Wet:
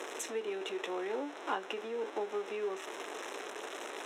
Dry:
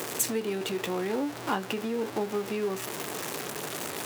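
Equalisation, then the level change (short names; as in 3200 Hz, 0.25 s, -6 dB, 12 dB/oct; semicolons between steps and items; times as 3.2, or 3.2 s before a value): HPF 330 Hz 24 dB/oct; Butterworth band-stop 4600 Hz, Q 4.3; air absorption 85 m; -4.5 dB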